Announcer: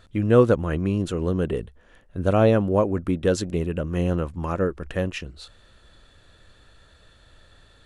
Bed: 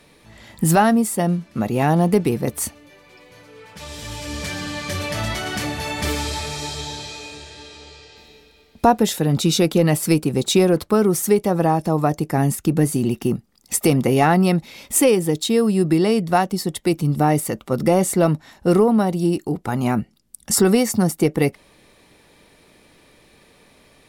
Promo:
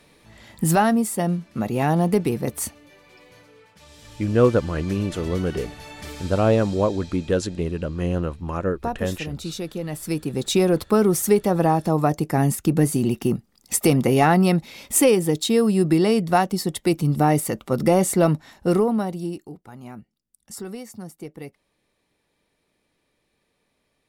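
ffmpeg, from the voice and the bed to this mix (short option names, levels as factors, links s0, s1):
-filter_complex "[0:a]adelay=4050,volume=0.944[s0];[1:a]volume=2.99,afade=t=out:st=3.29:d=0.46:silence=0.298538,afade=t=in:st=9.89:d=1.01:silence=0.237137,afade=t=out:st=18.37:d=1.24:silence=0.125893[s1];[s0][s1]amix=inputs=2:normalize=0"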